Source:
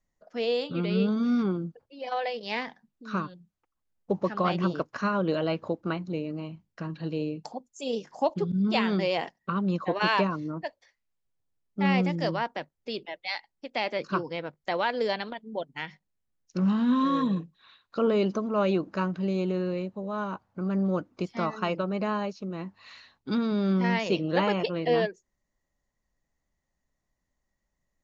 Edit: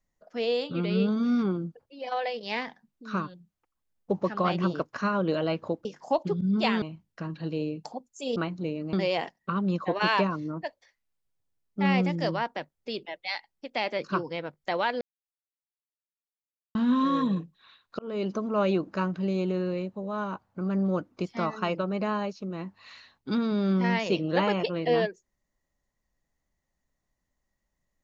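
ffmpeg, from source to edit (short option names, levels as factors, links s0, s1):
-filter_complex "[0:a]asplit=8[s0][s1][s2][s3][s4][s5][s6][s7];[s0]atrim=end=5.852[s8];[s1]atrim=start=7.958:end=8.932[s9];[s2]atrim=start=6.418:end=7.962[s10];[s3]atrim=start=5.848:end=6.422[s11];[s4]atrim=start=8.928:end=15.01,asetpts=PTS-STARTPTS,afade=t=out:st=6.078:d=0.004:c=hsin[s12];[s5]atrim=start=15.01:end=16.75,asetpts=PTS-STARTPTS,volume=0[s13];[s6]atrim=start=16.75:end=17.99,asetpts=PTS-STARTPTS,afade=t=in:d=0.004:c=hsin,afade=t=out:st=1.236:d=0.004:c=hsin[s14];[s7]atrim=start=17.99,asetpts=PTS-STARTPTS,afade=t=in:d=0.59:c=qsin[s15];[s8][s9]acrossfade=d=0.004:c1=hsin:c2=hsin[s16];[s16][s10]acrossfade=d=0.004:c1=hsin:c2=hsin[s17];[s17][s11]acrossfade=d=0.004:c1=hsin:c2=hsin[s18];[s12][s13][s14][s15]concat=n=4:v=0:a=1[s19];[s18][s19]acrossfade=d=0.004:c1=hsin:c2=hsin"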